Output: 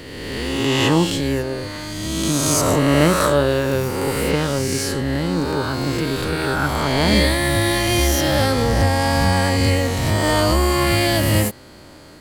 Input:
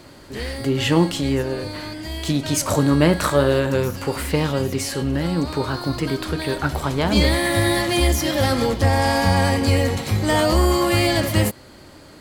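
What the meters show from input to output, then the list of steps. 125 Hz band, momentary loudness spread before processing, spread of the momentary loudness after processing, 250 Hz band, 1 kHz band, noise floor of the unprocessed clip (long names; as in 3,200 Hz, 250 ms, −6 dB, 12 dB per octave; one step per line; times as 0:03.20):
+1.0 dB, 7 LU, 6 LU, +1.0 dB, +2.0 dB, −44 dBFS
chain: peak hold with a rise ahead of every peak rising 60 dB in 1.78 s
level −1.5 dB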